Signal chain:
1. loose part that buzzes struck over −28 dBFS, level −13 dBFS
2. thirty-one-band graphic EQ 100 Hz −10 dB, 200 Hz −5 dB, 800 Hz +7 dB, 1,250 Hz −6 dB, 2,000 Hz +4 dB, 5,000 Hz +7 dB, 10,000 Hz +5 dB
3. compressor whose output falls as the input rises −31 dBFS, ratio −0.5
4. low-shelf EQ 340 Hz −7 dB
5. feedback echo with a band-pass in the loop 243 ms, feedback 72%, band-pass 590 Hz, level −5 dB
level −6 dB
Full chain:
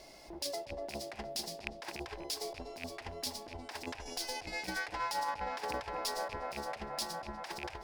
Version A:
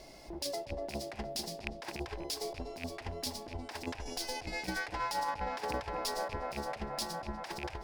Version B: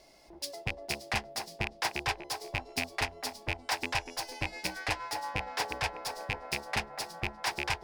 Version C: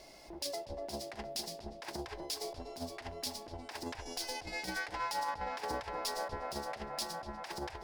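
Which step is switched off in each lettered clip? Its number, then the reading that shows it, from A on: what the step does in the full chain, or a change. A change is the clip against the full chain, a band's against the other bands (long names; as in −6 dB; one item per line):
4, 125 Hz band +6.0 dB
3, change in momentary loudness spread −2 LU
1, 125 Hz band +1.5 dB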